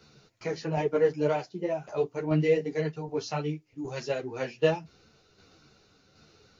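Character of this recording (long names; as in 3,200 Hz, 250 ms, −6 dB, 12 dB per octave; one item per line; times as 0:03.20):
tremolo saw down 1.3 Hz, depth 50%
a shimmering, thickened sound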